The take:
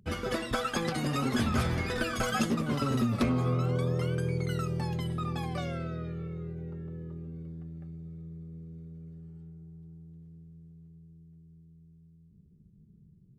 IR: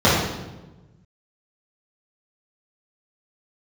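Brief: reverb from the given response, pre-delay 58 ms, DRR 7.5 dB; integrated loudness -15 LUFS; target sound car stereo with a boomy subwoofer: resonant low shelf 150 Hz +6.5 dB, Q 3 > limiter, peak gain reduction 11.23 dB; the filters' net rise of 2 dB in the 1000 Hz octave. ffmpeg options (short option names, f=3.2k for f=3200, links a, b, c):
-filter_complex "[0:a]equalizer=f=1k:t=o:g=3,asplit=2[a][b];[1:a]atrim=start_sample=2205,adelay=58[c];[b][c]afir=irnorm=-1:irlink=0,volume=-32dB[d];[a][d]amix=inputs=2:normalize=0,lowshelf=f=150:t=q:w=3:g=6.5,volume=11.5dB,alimiter=limit=-7dB:level=0:latency=1"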